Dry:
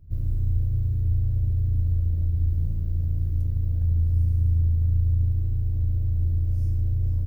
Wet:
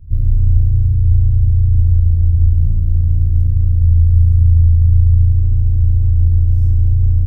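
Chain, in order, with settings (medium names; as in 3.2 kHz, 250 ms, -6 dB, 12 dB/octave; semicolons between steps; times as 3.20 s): bass shelf 160 Hz +11.5 dB; trim +2.5 dB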